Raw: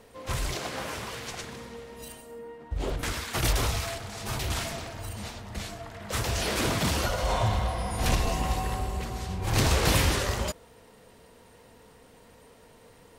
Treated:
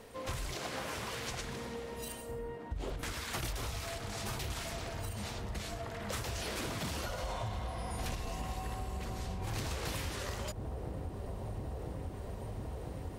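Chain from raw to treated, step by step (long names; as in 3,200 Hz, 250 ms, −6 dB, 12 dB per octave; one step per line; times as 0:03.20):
delay with a low-pass on its return 1,000 ms, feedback 76%, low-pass 630 Hz, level −13.5 dB
downward compressor 6 to 1, threshold −37 dBFS, peak gain reduction 16.5 dB
level +1 dB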